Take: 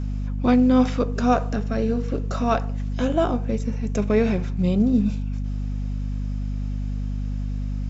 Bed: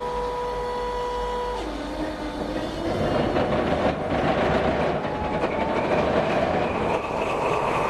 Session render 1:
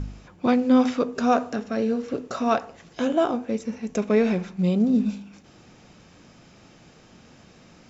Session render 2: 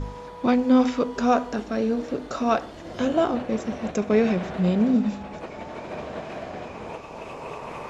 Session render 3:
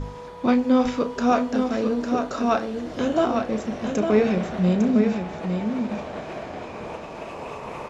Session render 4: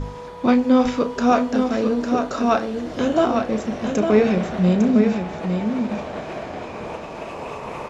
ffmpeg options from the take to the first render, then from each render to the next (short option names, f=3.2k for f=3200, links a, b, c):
-af "bandreject=f=50:t=h:w=4,bandreject=f=100:t=h:w=4,bandreject=f=150:t=h:w=4,bandreject=f=200:t=h:w=4,bandreject=f=250:t=h:w=4"
-filter_complex "[1:a]volume=-12.5dB[a];[0:a][a]amix=inputs=2:normalize=0"
-filter_complex "[0:a]asplit=2[a][b];[b]adelay=33,volume=-11dB[c];[a][c]amix=inputs=2:normalize=0,aecho=1:1:853:0.501"
-af "volume=3dB"